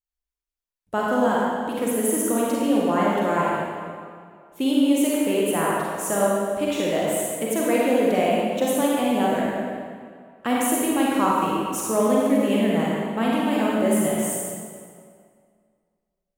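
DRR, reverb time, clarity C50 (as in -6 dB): -5.5 dB, 2.2 s, -3.5 dB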